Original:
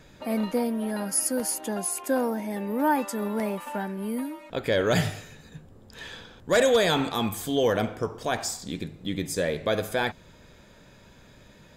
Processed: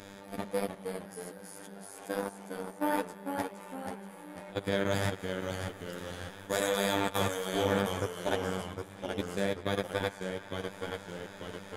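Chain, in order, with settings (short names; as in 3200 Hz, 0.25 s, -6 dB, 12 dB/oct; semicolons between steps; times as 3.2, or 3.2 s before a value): per-bin compression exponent 0.6; 5.19–7.55 high shelf 8800 Hz +10.5 dB; band-limited delay 93 ms, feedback 77%, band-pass 1400 Hz, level -4 dB; dynamic EQ 140 Hz, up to +7 dB, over -41 dBFS, Q 1.3; level quantiser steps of 20 dB; robotiser 99.2 Hz; flange 1.3 Hz, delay 3 ms, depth 4.9 ms, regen -53%; echoes that change speed 0.282 s, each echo -1 st, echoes 2, each echo -6 dB; gain -2.5 dB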